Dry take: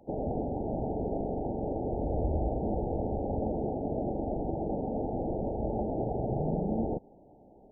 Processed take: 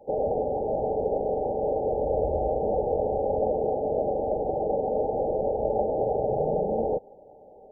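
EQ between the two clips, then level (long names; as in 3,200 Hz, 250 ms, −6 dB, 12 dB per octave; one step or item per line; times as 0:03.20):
Butterworth band-reject 690 Hz, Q 7.6
flat-topped bell 590 Hz +14.5 dB 1.2 octaves
−3.5 dB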